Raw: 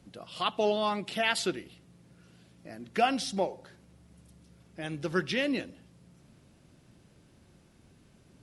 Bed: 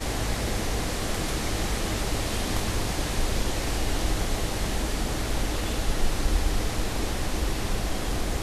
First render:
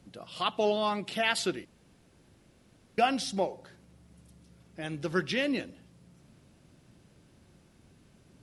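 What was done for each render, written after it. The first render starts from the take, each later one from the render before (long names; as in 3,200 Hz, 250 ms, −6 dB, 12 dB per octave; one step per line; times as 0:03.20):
0:01.65–0:02.98: fill with room tone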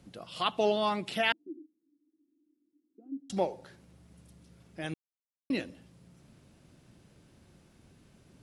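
0:01.32–0:03.30: flat-topped band-pass 300 Hz, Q 6.5
0:04.94–0:05.50: silence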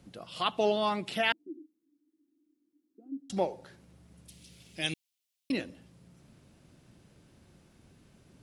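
0:04.28–0:05.52: high shelf with overshoot 2,000 Hz +11.5 dB, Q 1.5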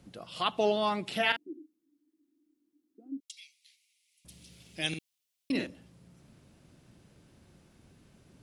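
0:01.10–0:01.53: double-tracking delay 42 ms −8 dB
0:03.20–0:04.25: Butterworth high-pass 2,100 Hz 96 dB per octave
0:04.88–0:05.67: double-tracking delay 49 ms −4.5 dB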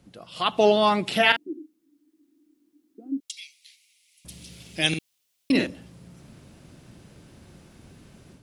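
automatic gain control gain up to 10 dB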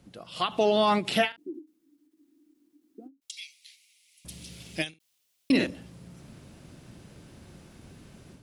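brickwall limiter −13.5 dBFS, peak gain reduction 10 dB
every ending faded ahead of time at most 250 dB per second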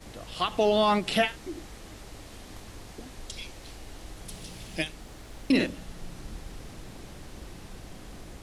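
mix in bed −17.5 dB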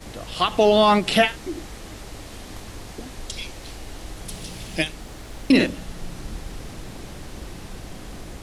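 level +7 dB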